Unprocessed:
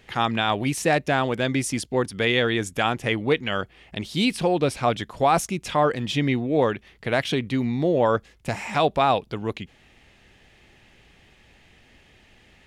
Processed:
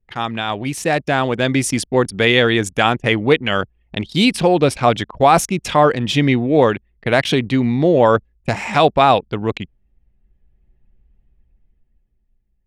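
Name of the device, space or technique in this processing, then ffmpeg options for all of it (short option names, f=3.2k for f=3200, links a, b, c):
voice memo with heavy noise removal: -af "anlmdn=2.51,dynaudnorm=f=110:g=21:m=11.5dB"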